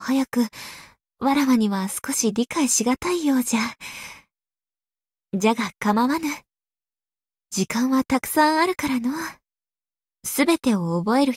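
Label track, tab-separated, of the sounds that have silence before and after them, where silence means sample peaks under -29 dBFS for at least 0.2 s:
1.220000	4.090000	sound
5.340000	6.370000	sound
7.520000	9.300000	sound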